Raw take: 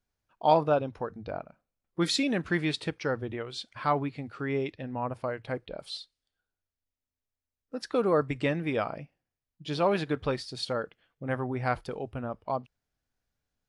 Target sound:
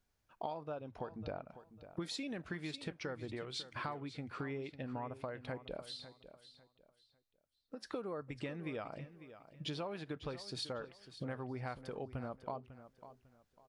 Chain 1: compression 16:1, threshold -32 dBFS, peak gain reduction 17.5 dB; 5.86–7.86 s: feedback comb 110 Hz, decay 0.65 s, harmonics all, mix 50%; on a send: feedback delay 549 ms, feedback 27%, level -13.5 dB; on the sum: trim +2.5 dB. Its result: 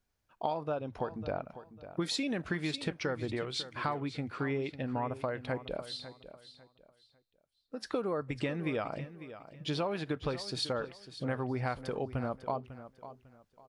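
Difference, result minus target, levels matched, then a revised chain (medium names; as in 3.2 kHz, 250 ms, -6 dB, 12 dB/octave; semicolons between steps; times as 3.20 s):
compression: peak gain reduction -8.5 dB
compression 16:1, threshold -41 dBFS, peak gain reduction 25.5 dB; 5.86–7.86 s: feedback comb 110 Hz, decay 0.65 s, harmonics all, mix 50%; on a send: feedback delay 549 ms, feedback 27%, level -13.5 dB; on the sum: trim +2.5 dB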